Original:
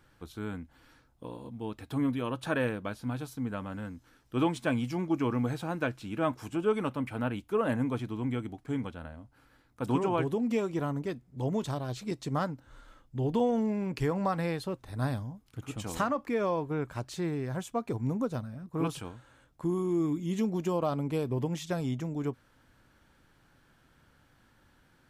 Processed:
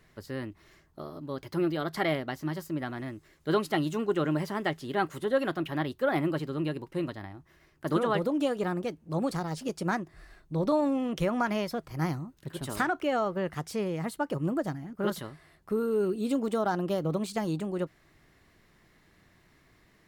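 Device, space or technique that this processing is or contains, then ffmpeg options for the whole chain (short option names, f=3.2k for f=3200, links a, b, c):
nightcore: -af "asetrate=55125,aresample=44100,volume=1.5dB"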